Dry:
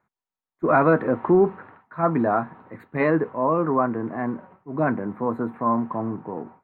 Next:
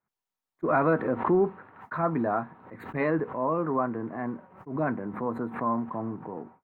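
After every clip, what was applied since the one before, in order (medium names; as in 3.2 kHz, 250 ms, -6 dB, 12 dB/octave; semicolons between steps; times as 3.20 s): expander -44 dBFS; swell ahead of each attack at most 100 dB/s; trim -6 dB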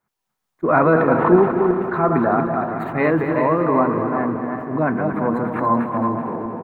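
backward echo that repeats 190 ms, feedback 58%, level -5 dB; feedback delay 232 ms, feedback 57%, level -9.5 dB; trim +8 dB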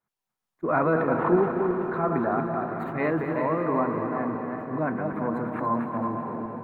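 echo that smears into a reverb 548 ms, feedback 48%, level -12 dB; trim -8 dB; AAC 192 kbps 48 kHz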